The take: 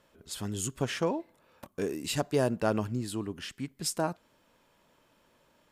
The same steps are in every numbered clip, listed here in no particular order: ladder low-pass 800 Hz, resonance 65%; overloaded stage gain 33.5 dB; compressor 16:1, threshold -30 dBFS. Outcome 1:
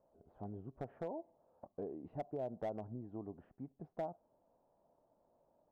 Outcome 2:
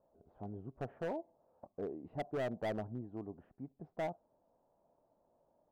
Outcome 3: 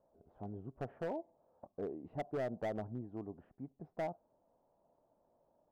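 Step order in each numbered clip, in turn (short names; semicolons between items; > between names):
compressor > ladder low-pass > overloaded stage; ladder low-pass > overloaded stage > compressor; ladder low-pass > compressor > overloaded stage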